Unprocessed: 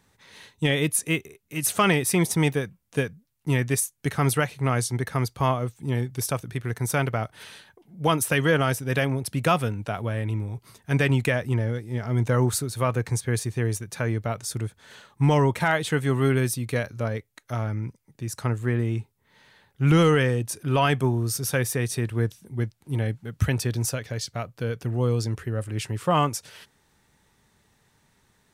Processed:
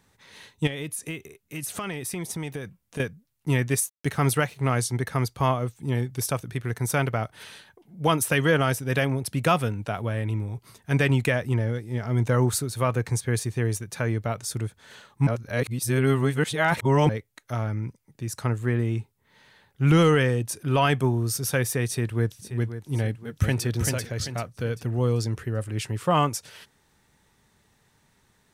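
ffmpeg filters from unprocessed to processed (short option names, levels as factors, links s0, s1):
-filter_complex "[0:a]asettb=1/sr,asplit=3[s0][s1][s2];[s0]atrim=end=0.674[s3];[s1]atrim=start=0.67:end=3,asetpts=PTS-STARTPTS,afade=t=in:d=0.004:c=qsin,afade=t=out:st=2.326:d=0.004:c=qsin,acompressor=threshold=0.0355:ratio=6:attack=3.2:release=140:knee=1:detection=peak[s4];[s2]atrim=start=2.996[s5];[s3][s4]acrossfade=d=0.004:c1=hsin:c2=qsin[s6];[s6][s5]acrossfade=d=0.004:c1=qsin:c2=hsin,asettb=1/sr,asplit=3[s7][s8][s9];[s7]atrim=end=3.674[s10];[s8]atrim=start=3.67:end=4.82,asetpts=PTS-STARTPTS,afade=t=in:d=0.004:c=qsin,afade=t=out:st=1.146:d=0.004:c=qsin,aeval=exprs='sgn(val(0))*max(abs(val(0))-0.00211,0)':c=same[s11];[s9]atrim=start=4.816[s12];[s10][s11]acrossfade=d=0.004:c1=hsin:c2=qsin[s13];[s13][s12]acrossfade=d=0.004:c1=qsin:c2=hsin,asplit=2[s14][s15];[s15]afade=t=in:st=21.86:d=0.01,afade=t=out:st=22.54:d=0.01,aecho=0:1:530|1060|1590|2120|2650|3180|3710:0.266073|0.159644|0.0957861|0.0574717|0.034483|0.0206898|0.0124139[s16];[s14][s16]amix=inputs=2:normalize=0,asplit=2[s17][s18];[s18]afade=t=in:st=23.04:d=0.01,afade=t=out:st=23.65:d=0.01,aecho=0:1:390|780|1170|1560|1950:0.630957|0.252383|0.100953|0.0403813|0.0161525[s19];[s17][s19]amix=inputs=2:normalize=0,asplit=3[s20][s21][s22];[s20]atrim=end=15.272[s23];[s21]atrim=start=15.268:end=17.092,asetpts=PTS-STARTPTS,areverse[s24];[s22]atrim=start=17.088[s25];[s23][s24]acrossfade=d=0.004:c1=hsin:c2=hsin[s26];[s26][s25]acrossfade=d=0.004:c1=hsin:c2=hsin"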